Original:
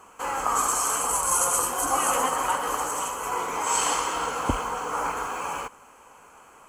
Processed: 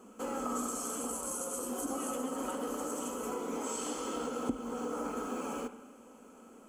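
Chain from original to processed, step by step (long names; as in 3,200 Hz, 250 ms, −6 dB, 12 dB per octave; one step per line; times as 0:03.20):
octave-band graphic EQ 125/250/500/1,000/2,000 Hz −9/+12/+7/−8/−6 dB
downward compressor 10 to 1, threshold −28 dBFS, peak gain reduction 16.5 dB
hollow resonant body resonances 220/1,300/3,400 Hz, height 12 dB, ringing for 60 ms
convolution reverb RT60 1.2 s, pre-delay 33 ms, DRR 11 dB
level −7 dB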